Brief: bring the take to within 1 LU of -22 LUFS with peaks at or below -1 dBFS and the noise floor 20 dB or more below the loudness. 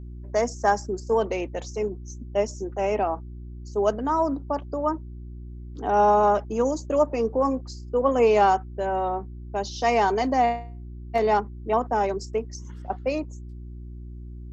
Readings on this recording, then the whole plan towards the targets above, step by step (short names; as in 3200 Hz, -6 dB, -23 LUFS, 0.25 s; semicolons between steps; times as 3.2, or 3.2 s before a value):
hum 60 Hz; harmonics up to 360 Hz; hum level -36 dBFS; loudness -25.0 LUFS; peak -8.5 dBFS; loudness target -22.0 LUFS
-> de-hum 60 Hz, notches 6; gain +3 dB